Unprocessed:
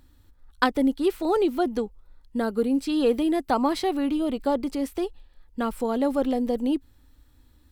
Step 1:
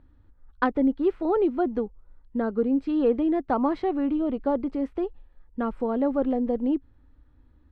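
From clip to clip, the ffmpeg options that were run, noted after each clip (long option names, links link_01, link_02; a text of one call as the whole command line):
ffmpeg -i in.wav -af "lowpass=1500,equalizer=frequency=830:width_type=o:width=0.77:gain=-2" out.wav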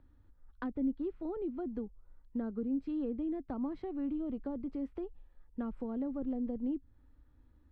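ffmpeg -i in.wav -filter_complex "[0:a]acrossover=split=270[link_01][link_02];[link_02]acompressor=threshold=-37dB:ratio=10[link_03];[link_01][link_03]amix=inputs=2:normalize=0,volume=-6dB" out.wav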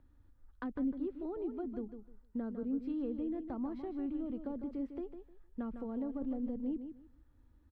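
ffmpeg -i in.wav -af "aecho=1:1:153|306|459:0.355|0.0745|0.0156,volume=-2dB" out.wav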